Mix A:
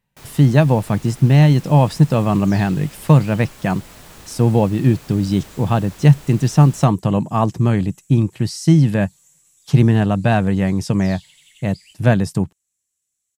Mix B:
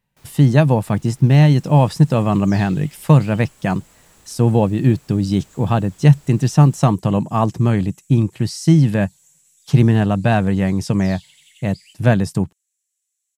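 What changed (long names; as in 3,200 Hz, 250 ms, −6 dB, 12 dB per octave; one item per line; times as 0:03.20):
first sound −11.5 dB
second sound: add high-pass filter 1,500 Hz 24 dB per octave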